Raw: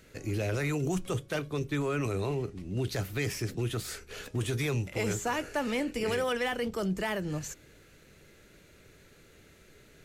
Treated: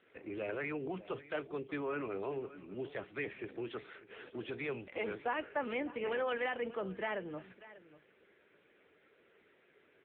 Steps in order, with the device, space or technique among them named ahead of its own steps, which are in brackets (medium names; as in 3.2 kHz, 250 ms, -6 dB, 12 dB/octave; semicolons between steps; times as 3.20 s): satellite phone (band-pass 330–3100 Hz; delay 592 ms -17 dB; trim -3 dB; AMR-NB 6.7 kbps 8 kHz)